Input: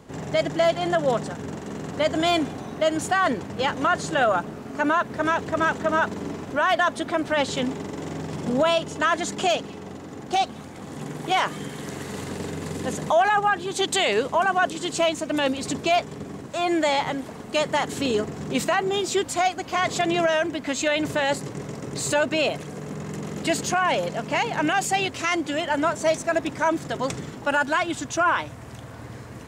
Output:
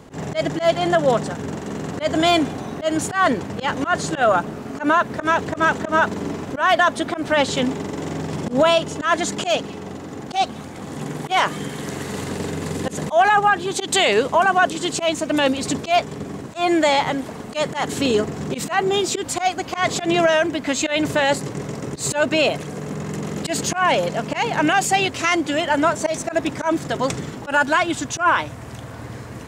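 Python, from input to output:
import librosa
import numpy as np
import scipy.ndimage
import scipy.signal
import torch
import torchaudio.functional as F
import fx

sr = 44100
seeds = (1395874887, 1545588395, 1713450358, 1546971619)

y = fx.auto_swell(x, sr, attack_ms=100.0)
y = y * librosa.db_to_amplitude(5.0)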